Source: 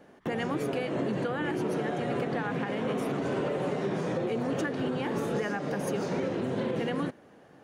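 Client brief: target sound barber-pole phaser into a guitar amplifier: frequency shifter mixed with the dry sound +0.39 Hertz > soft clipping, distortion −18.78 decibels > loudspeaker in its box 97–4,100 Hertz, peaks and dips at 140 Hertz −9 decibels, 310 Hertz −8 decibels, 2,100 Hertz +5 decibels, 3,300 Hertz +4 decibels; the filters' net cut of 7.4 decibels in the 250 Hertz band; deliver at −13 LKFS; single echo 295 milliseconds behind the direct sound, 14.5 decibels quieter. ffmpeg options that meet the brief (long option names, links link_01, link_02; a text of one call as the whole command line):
ffmpeg -i in.wav -filter_complex "[0:a]equalizer=frequency=250:width_type=o:gain=-5,aecho=1:1:295:0.188,asplit=2[link_01][link_02];[link_02]afreqshift=0.39[link_03];[link_01][link_03]amix=inputs=2:normalize=1,asoftclip=threshold=-28.5dB,highpass=97,equalizer=frequency=140:width_type=q:width=4:gain=-9,equalizer=frequency=310:width_type=q:width=4:gain=-8,equalizer=frequency=2100:width_type=q:width=4:gain=5,equalizer=frequency=3300:width_type=q:width=4:gain=4,lowpass=frequency=4100:width=0.5412,lowpass=frequency=4100:width=1.3066,volume=25dB" out.wav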